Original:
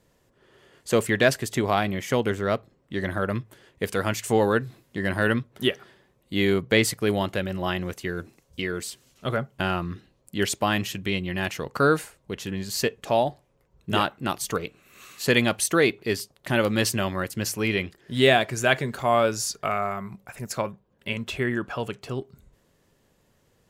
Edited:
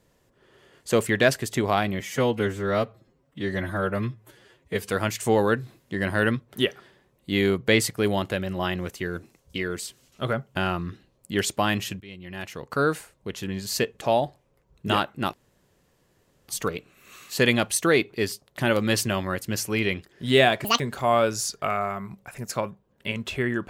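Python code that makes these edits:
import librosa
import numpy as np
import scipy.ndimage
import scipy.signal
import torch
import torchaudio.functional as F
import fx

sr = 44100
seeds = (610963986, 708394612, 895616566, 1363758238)

y = fx.edit(x, sr, fx.stretch_span(start_s=2.0, length_s=1.93, factor=1.5),
    fx.fade_in_from(start_s=11.04, length_s=1.72, curve='qsin', floor_db=-21.5),
    fx.insert_room_tone(at_s=14.37, length_s=1.15),
    fx.speed_span(start_s=18.53, length_s=0.28, speed=1.82), tone=tone)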